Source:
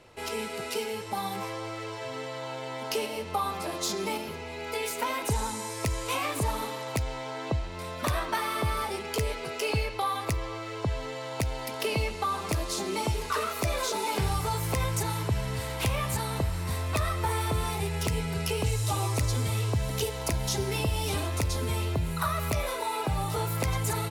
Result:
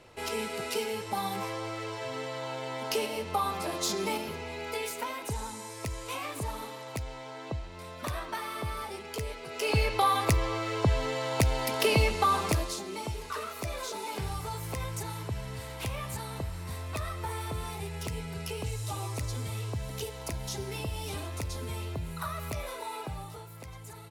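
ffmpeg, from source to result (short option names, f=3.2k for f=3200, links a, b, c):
-af "volume=11dB,afade=t=out:st=4.5:d=0.65:silence=0.473151,afade=t=in:st=9.48:d=0.44:silence=0.281838,afade=t=out:st=12.36:d=0.45:silence=0.266073,afade=t=out:st=22.94:d=0.51:silence=0.316228"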